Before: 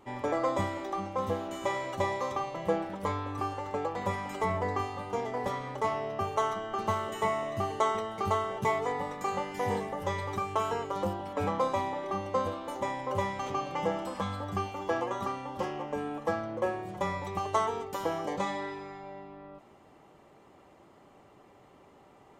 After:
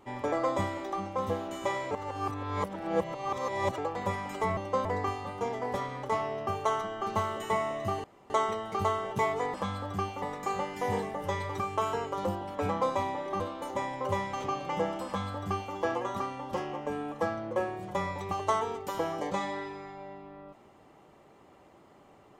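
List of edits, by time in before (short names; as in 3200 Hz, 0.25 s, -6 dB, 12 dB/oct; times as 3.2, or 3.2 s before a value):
1.91–3.78 reverse
7.76 insert room tone 0.26 s
12.18–12.46 move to 4.57
14.12–14.8 copy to 9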